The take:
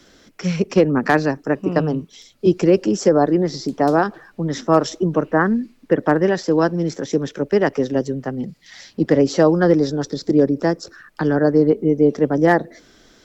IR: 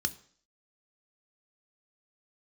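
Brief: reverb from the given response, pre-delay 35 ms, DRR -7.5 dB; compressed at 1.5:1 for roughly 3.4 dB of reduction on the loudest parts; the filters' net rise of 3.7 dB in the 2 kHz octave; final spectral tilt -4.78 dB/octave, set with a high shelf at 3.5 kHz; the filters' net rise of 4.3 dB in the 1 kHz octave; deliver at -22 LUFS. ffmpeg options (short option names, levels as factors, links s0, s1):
-filter_complex "[0:a]equalizer=f=1000:t=o:g=5.5,equalizer=f=2000:t=o:g=3.5,highshelf=f=3500:g=-4,acompressor=threshold=0.141:ratio=1.5,asplit=2[s0][s1];[1:a]atrim=start_sample=2205,adelay=35[s2];[s1][s2]afir=irnorm=-1:irlink=0,volume=1.5[s3];[s0][s3]amix=inputs=2:normalize=0,volume=0.251"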